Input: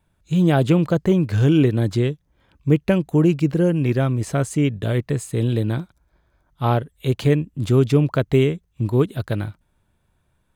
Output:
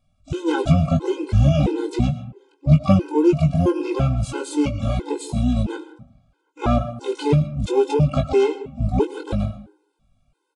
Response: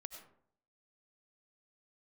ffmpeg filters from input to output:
-filter_complex "[0:a]asplit=3[a][b][c];[b]asetrate=22050,aresample=44100,atempo=2,volume=-4dB[d];[c]asetrate=88200,aresample=44100,atempo=0.5,volume=-10dB[e];[a][d][e]amix=inputs=3:normalize=0,asuperstop=centerf=1800:order=4:qfactor=3.7,asplit=2[f][g];[1:a]atrim=start_sample=2205,adelay=20[h];[g][h]afir=irnorm=-1:irlink=0,volume=-1dB[i];[f][i]amix=inputs=2:normalize=0,aresample=22050,aresample=44100,afftfilt=real='re*gt(sin(2*PI*1.5*pts/sr)*(1-2*mod(floor(b*sr/1024/270),2)),0)':imag='im*gt(sin(2*PI*1.5*pts/sr)*(1-2*mod(floor(b*sr/1024/270),2)),0)':win_size=1024:overlap=0.75"

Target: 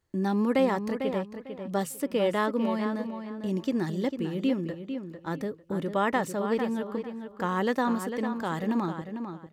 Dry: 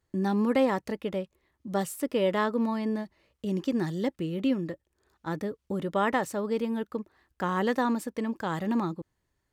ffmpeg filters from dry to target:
-filter_complex "[0:a]bandreject=f=50:t=h:w=6,bandreject=f=100:t=h:w=6,bandreject=f=150:t=h:w=6,asplit=2[a][b];[b]adelay=449,lowpass=f=3.8k:p=1,volume=-8dB,asplit=2[c][d];[d]adelay=449,lowpass=f=3.8k:p=1,volume=0.24,asplit=2[e][f];[f]adelay=449,lowpass=f=3.8k:p=1,volume=0.24[g];[c][e][g]amix=inputs=3:normalize=0[h];[a][h]amix=inputs=2:normalize=0"

